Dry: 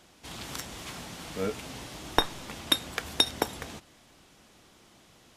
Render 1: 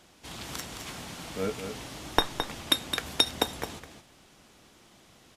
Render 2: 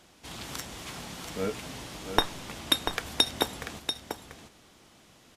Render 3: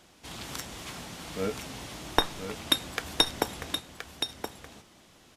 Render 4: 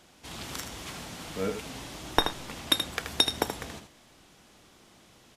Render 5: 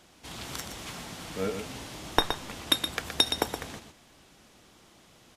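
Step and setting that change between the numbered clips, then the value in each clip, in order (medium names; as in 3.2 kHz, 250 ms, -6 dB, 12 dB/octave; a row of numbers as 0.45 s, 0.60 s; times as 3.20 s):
delay, time: 215 ms, 689 ms, 1023 ms, 79 ms, 120 ms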